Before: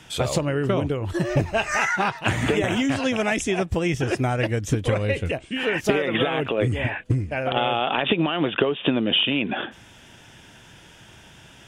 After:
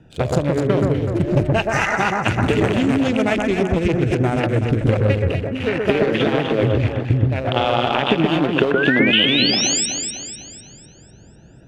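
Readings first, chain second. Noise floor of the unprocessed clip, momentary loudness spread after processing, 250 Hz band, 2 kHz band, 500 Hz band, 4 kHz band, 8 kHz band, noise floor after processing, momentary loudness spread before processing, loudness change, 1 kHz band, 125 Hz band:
-49 dBFS, 6 LU, +6.0 dB, +4.0 dB, +5.0 dB, +5.5 dB, +11.0 dB, -45 dBFS, 4 LU, +5.0 dB, +3.5 dB, +6.5 dB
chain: Wiener smoothing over 41 samples; painted sound rise, 8.75–9.86, 1400–8300 Hz -25 dBFS; echo with dull and thin repeats by turns 0.125 s, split 1800 Hz, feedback 68%, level -2 dB; gain +4 dB

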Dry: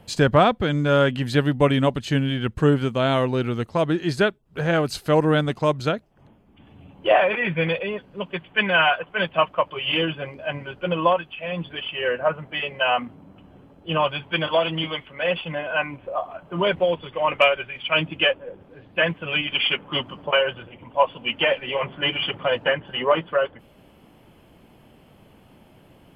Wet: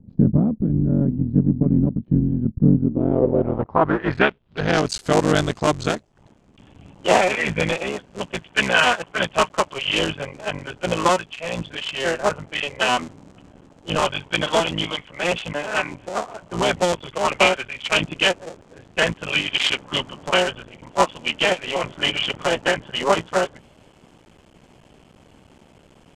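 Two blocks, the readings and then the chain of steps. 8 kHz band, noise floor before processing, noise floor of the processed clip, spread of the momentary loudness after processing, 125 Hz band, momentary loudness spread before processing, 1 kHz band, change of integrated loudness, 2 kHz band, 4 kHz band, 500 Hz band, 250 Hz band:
n/a, -53 dBFS, -53 dBFS, 10 LU, +2.5 dB, 11 LU, +1.0 dB, +1.5 dB, +1.0 dB, +2.0 dB, -0.5 dB, +4.0 dB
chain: cycle switcher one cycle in 3, muted; low-pass sweep 220 Hz -> 7400 Hz, 2.78–4.93; gain +2.5 dB

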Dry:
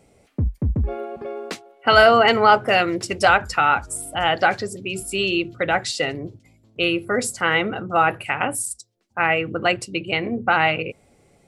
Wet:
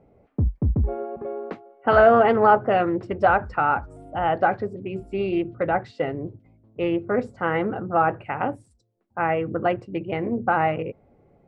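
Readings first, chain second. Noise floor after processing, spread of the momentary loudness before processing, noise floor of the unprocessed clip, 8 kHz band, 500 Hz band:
-61 dBFS, 17 LU, -58 dBFS, under -35 dB, -0.5 dB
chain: LPF 1100 Hz 12 dB/oct; Doppler distortion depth 0.24 ms

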